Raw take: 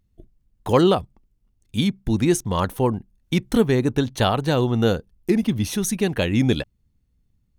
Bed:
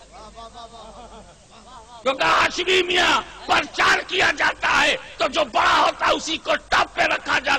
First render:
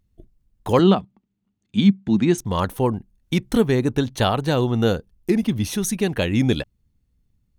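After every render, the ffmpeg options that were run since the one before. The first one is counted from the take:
-filter_complex "[0:a]asettb=1/sr,asplit=3[a][b][c];[a]atrim=end=0.794[d];[b]atrim=start=0.79:end=2.38,asetpts=PTS-STARTPTS,afade=t=in:d=0.004:c=qsin,afade=t=out:st=1.586:d=0.004:c=qsin,highpass=150,equalizer=f=200:t=q:w=4:g=10,equalizer=f=520:t=q:w=4:g=-5,equalizer=f=5.4k:t=q:w=4:g=-10,lowpass=f=6.5k:w=0.5412,lowpass=f=6.5k:w=1.3066[e];[c]atrim=start=2.376[f];[d][e]acrossfade=d=0.004:c1=hsin:c2=qsin[g];[g][f]acrossfade=d=0.004:c1=qsin:c2=hsin"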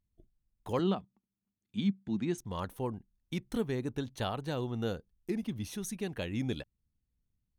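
-af "volume=-15dB"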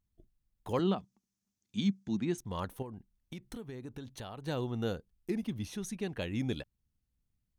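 -filter_complex "[0:a]asettb=1/sr,asplit=3[a][b][c];[a]atrim=end=0.984[d];[b]atrim=start=0.98:end=2.17,asetpts=PTS-STARTPTS,afade=t=in:d=0.004:c=qsin,afade=t=out:st=1.186:d=0.004:c=qsin,equalizer=f=6.1k:w=1.5:g=13[e];[c]atrim=start=2.166[f];[d][e]acrossfade=d=0.004:c1=hsin:c2=qsin[g];[g][f]acrossfade=d=0.004:c1=qsin:c2=hsin,asettb=1/sr,asplit=3[h][i][j];[h]atrim=end=2.824[k];[i]atrim=start=2.82:end=4.47,asetpts=PTS-STARTPTS,afade=t=in:d=0.004:c=qsin,afade=t=out:st=1.646:d=0.004:c=qsin,acompressor=threshold=-40dB:ratio=5:attack=3.2:release=140:knee=1:detection=peak[l];[j]atrim=start=4.466[m];[k][l]acrossfade=d=0.004:c1=hsin:c2=qsin[n];[n][m]acrossfade=d=0.004:c1=qsin:c2=hsin,asettb=1/sr,asplit=3[o][p][q];[o]atrim=end=5.654[r];[p]atrim=start=5.65:end=6.2,asetpts=PTS-STARTPTS,afade=t=in:d=0.004:c=qsin,afade=t=out:st=0.546:d=0.004:c=qsin,highshelf=f=11k:g=-12[s];[q]atrim=start=6.196[t];[r][s]acrossfade=d=0.004:c1=hsin:c2=qsin[u];[u][t]acrossfade=d=0.004:c1=qsin:c2=hsin"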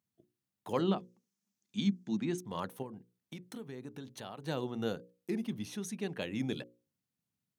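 -af "highpass=f=130:w=0.5412,highpass=f=130:w=1.3066,bandreject=f=60:t=h:w=6,bandreject=f=120:t=h:w=6,bandreject=f=180:t=h:w=6,bandreject=f=240:t=h:w=6,bandreject=f=300:t=h:w=6,bandreject=f=360:t=h:w=6,bandreject=f=420:t=h:w=6,bandreject=f=480:t=h:w=6,bandreject=f=540:t=h:w=6"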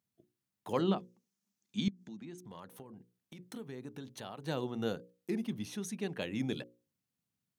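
-filter_complex "[0:a]asettb=1/sr,asplit=3[a][b][c];[a]atrim=end=1.884[d];[b]atrim=start=1.88:end=3.39,asetpts=PTS-STARTPTS,afade=t=in:d=0.004:c=qsin,afade=t=out:st=1.506:d=0.004:c=qsin,acompressor=threshold=-48dB:ratio=3:attack=3.2:release=140:knee=1:detection=peak[e];[c]atrim=start=3.386[f];[d][e]acrossfade=d=0.004:c1=hsin:c2=qsin[g];[g][f]acrossfade=d=0.004:c1=qsin:c2=hsin"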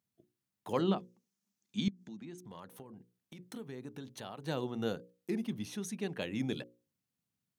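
-af anull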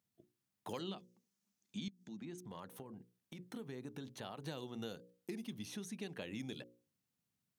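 -filter_complex "[0:a]acrossover=split=2700[a][b];[a]acompressor=threshold=-42dB:ratio=6[c];[b]alimiter=level_in=17.5dB:limit=-24dB:level=0:latency=1:release=71,volume=-17.5dB[d];[c][d]amix=inputs=2:normalize=0"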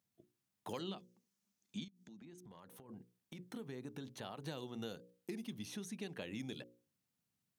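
-filter_complex "[0:a]asplit=3[a][b][c];[a]afade=t=out:st=1.83:d=0.02[d];[b]acompressor=threshold=-55dB:ratio=3:attack=3.2:release=140:knee=1:detection=peak,afade=t=in:st=1.83:d=0.02,afade=t=out:st=2.88:d=0.02[e];[c]afade=t=in:st=2.88:d=0.02[f];[d][e][f]amix=inputs=3:normalize=0"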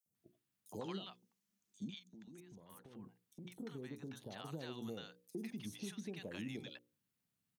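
-filter_complex "[0:a]acrossover=split=750|5800[a][b][c];[a]adelay=60[d];[b]adelay=150[e];[d][e][c]amix=inputs=3:normalize=0"

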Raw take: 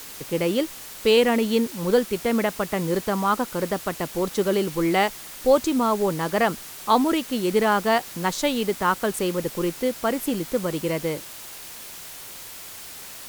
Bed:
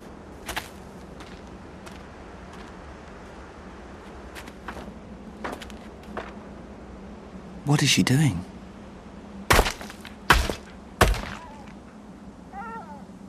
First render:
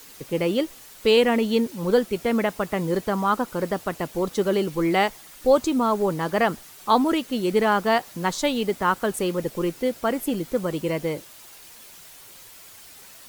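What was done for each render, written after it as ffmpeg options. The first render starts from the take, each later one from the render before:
-af "afftdn=nr=8:nf=-40"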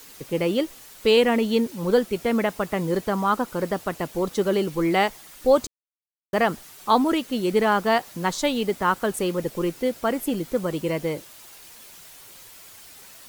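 -filter_complex "[0:a]asplit=3[a][b][c];[a]atrim=end=5.67,asetpts=PTS-STARTPTS,afade=t=out:st=5.666:d=0.004:c=hsin[d];[b]atrim=start=5.67:end=6.33,asetpts=PTS-STARTPTS,volume=0[e];[c]atrim=start=6.33,asetpts=PTS-STARTPTS,afade=t=in:d=0.004:c=hsin[f];[d][e][f]concat=n=3:v=0:a=1"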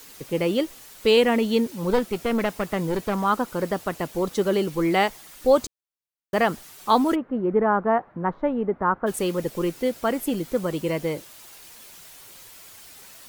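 -filter_complex "[0:a]asettb=1/sr,asplit=3[a][b][c];[a]atrim=end=1.924[d];[b]atrim=start=1.92:end=3.24,asetpts=PTS-STARTPTS,afade=t=in:d=0.004:c=qsin,afade=t=out:st=1.316:d=0.004:c=qsin,aeval=exprs='clip(val(0),-1,0.0596)':c=same[e];[c]atrim=start=3.236[f];[d][e]acrossfade=d=0.004:c1=hsin:c2=qsin[g];[g][f]acrossfade=d=0.004:c1=qsin:c2=hsin,asplit=3[h][i][j];[h]afade=t=out:st=7.14:d=0.02[k];[i]lowpass=f=1.5k:w=0.5412,lowpass=f=1.5k:w=1.3066,afade=t=in:st=7.14:d=0.02,afade=t=out:st=9.06:d=0.02[l];[j]afade=t=in:st=9.06:d=0.02[m];[k][l][m]amix=inputs=3:normalize=0"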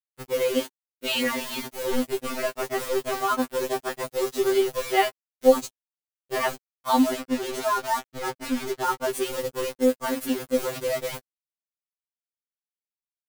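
-af "acrusher=bits=4:mix=0:aa=0.000001,afftfilt=real='re*2.45*eq(mod(b,6),0)':imag='im*2.45*eq(mod(b,6),0)':win_size=2048:overlap=0.75"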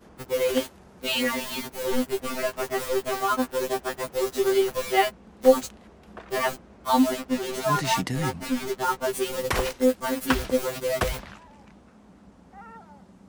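-filter_complex "[1:a]volume=-8.5dB[a];[0:a][a]amix=inputs=2:normalize=0"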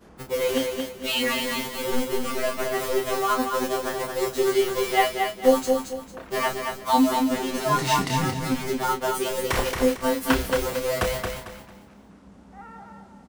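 -filter_complex "[0:a]asplit=2[a][b];[b]adelay=30,volume=-6.5dB[c];[a][c]amix=inputs=2:normalize=0,asplit=2[d][e];[e]aecho=0:1:225|450|675|900:0.562|0.163|0.0473|0.0137[f];[d][f]amix=inputs=2:normalize=0"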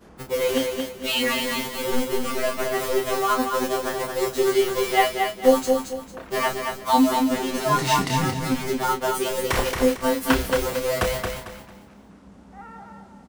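-af "volume=1.5dB"

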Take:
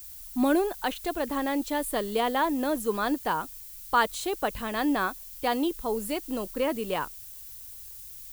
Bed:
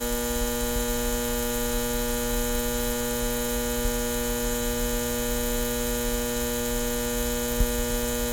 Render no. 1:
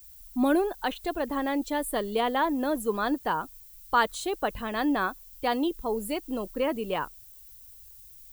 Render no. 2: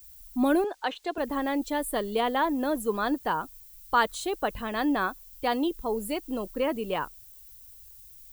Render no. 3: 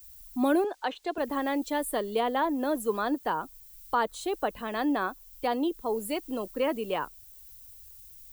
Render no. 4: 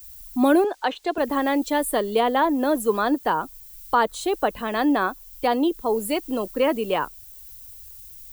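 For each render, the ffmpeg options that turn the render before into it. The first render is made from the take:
-af "afftdn=nr=9:nf=-44"
-filter_complex "[0:a]asettb=1/sr,asplit=3[a][b][c];[a]atrim=end=0.644[d];[b]atrim=start=0.64:end=1.18,asetpts=PTS-STARTPTS,afade=t=in:d=0.004:c=qsin,afade=t=out:st=0.536:d=0.004:c=qsin,acrossover=split=260 7700:gain=0.0708 1 0.112[e][f][g];[e][f][g]amix=inputs=3:normalize=0[h];[c]atrim=start=1.176[i];[d][h]acrossfade=d=0.004:c1=hsin:c2=qsin[j];[j][i]acrossfade=d=0.004:c1=qsin:c2=hsin"
-filter_complex "[0:a]acrossover=split=200|1000[a][b][c];[a]acompressor=threshold=-51dB:ratio=6[d];[c]alimiter=level_in=1dB:limit=-24dB:level=0:latency=1:release=481,volume=-1dB[e];[d][b][e]amix=inputs=3:normalize=0"
-af "volume=7dB"

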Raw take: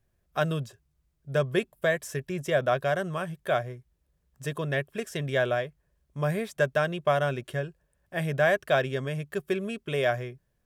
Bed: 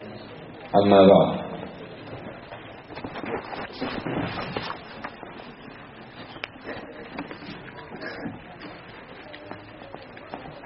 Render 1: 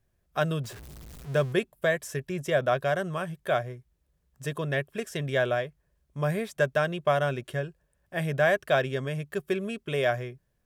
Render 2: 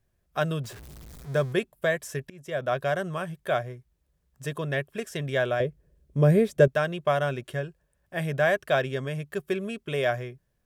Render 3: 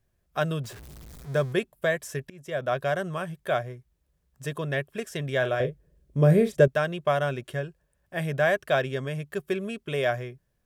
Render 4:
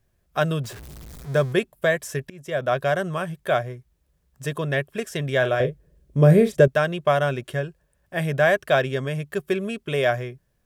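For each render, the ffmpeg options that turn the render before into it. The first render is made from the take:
-filter_complex "[0:a]asettb=1/sr,asplit=3[a][b][c];[a]atrim=end=0.644[d];[b]atrim=start=0.64:end=1.53,asetpts=PTS-STARTPTS,afade=t=in:d=0.004:c=qsin,afade=t=out:st=0.886:d=0.004:c=qsin,aeval=exprs='val(0)+0.5*0.0112*sgn(val(0))':c=same[e];[c]atrim=start=1.526[f];[d][e]acrossfade=d=0.004:c1=hsin:c2=qsin[g];[g][f]acrossfade=d=0.004:c1=qsin:c2=hsin"
-filter_complex "[0:a]asettb=1/sr,asplit=3[a][b][c];[a]atrim=end=1.094[d];[b]atrim=start=1.09:end=1.52,asetpts=PTS-STARTPTS,afade=t=in:d=0.004:c=qsin,afade=t=out:st=0.426:d=0.004:c=qsin,equalizer=f=2.8k:t=o:w=0.21:g=-9[e];[c]atrim=start=1.516[f];[d][e]acrossfade=d=0.004:c1=hsin:c2=qsin[g];[g][f]acrossfade=d=0.004:c1=qsin:c2=hsin,asettb=1/sr,asplit=3[h][i][j];[h]atrim=end=5.604[k];[i]atrim=start=5.6:end=6.68,asetpts=PTS-STARTPTS,afade=t=in:d=0.004:c=qsin,afade=t=out:st=1.076:d=0.004:c=qsin,lowshelf=f=630:t=q:w=1.5:g=9[l];[j]atrim=start=6.676[m];[k][l]acrossfade=d=0.004:c1=hsin:c2=qsin[n];[n][m]acrossfade=d=0.004:c1=qsin:c2=hsin,asplit=2[o][p];[o]atrim=end=2.3,asetpts=PTS-STARTPTS,afade=t=out:st=2.296:d=0.004:c=hsin:silence=0.0668344[q];[p]atrim=start=2.3,asetpts=PTS-STARTPTS,afade=t=in:d=0.52:silence=0.0668344[r];[q][r]concat=n=2:v=0:a=1"
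-filter_complex "[0:a]asettb=1/sr,asplit=3[a][b][c];[a]atrim=end=5.384[d];[b]atrim=start=5.38:end=6.58,asetpts=PTS-STARTPTS,afade=t=in:d=0.004:c=qsin,afade=t=out:st=1.196:d=0.004:c=qsin,asplit=2[e][f];[f]adelay=39,volume=-10dB[g];[e][g]amix=inputs=2:normalize=0,atrim=end_sample=52920[h];[c]atrim=start=6.576[i];[d][h]acrossfade=d=0.004:c1=hsin:c2=qsin[j];[j][i]acrossfade=d=0.004:c1=qsin:c2=hsin"
-af "volume=4.5dB,alimiter=limit=-3dB:level=0:latency=1"

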